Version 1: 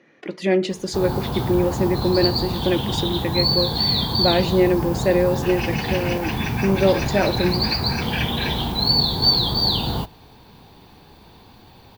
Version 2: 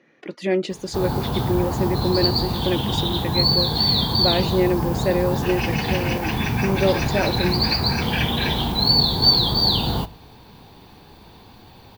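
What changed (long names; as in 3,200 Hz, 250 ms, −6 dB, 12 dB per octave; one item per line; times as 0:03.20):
speech: send off
background: send +10.0 dB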